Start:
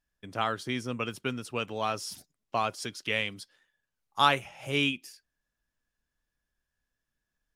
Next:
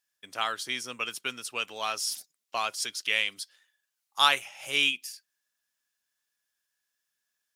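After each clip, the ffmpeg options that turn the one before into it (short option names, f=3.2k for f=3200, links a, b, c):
-af "highpass=f=970:p=1,highshelf=f=2.6k:g=9.5"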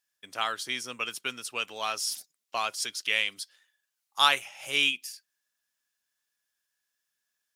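-af anull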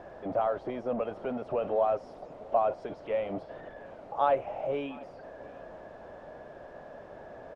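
-af "aeval=exprs='val(0)+0.5*0.0335*sgn(val(0))':c=same,lowpass=f=620:t=q:w=4,aecho=1:1:704:0.0668"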